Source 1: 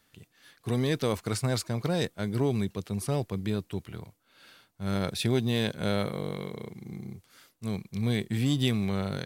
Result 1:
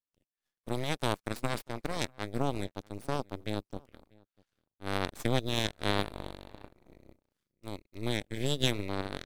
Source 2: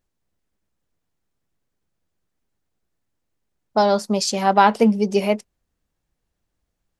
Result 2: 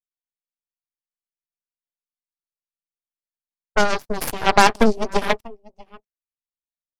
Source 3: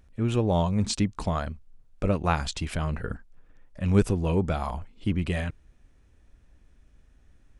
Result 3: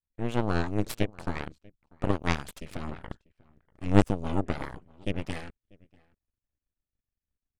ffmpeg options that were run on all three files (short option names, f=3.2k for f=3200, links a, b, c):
-filter_complex "[0:a]asplit=2[a][b];[b]adelay=641.4,volume=-13dB,highshelf=f=4k:g=-14.4[c];[a][c]amix=inputs=2:normalize=0,aeval=exprs='0.944*(cos(1*acos(clip(val(0)/0.944,-1,1)))-cos(1*PI/2))+0.133*(cos(7*acos(clip(val(0)/0.944,-1,1)))-cos(7*PI/2))+0.168*(cos(8*acos(clip(val(0)/0.944,-1,1)))-cos(8*PI/2))':c=same"